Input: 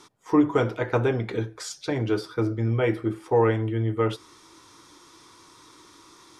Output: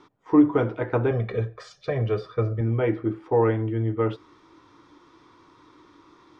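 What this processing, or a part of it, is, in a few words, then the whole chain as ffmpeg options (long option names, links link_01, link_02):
phone in a pocket: -filter_complex "[0:a]asettb=1/sr,asplit=3[link_01][link_02][link_03];[link_01]atrim=end=1.114[link_04];[link_02]atrim=start=1.11:end=2.61,asetpts=PTS-STARTPTS,afade=type=in:duration=0.004:curve=qsin,afade=type=out:start_time=1.496:duration=0.004:curve=qsin,aecho=1:1:1.7:0.88,atrim=end_sample=66150[link_05];[link_03]atrim=start=2.606[link_06];[link_04][link_05]acrossfade=duration=0.004:curve1=hsin:curve2=qsin[link_07];[link_07][link_06]acrossfade=duration=0.004:curve1=qsin:curve2=hsin,lowpass=3600,equalizer=frequency=290:width_type=o:width=0.21:gain=4,highshelf=frequency=2300:gain=-8.5"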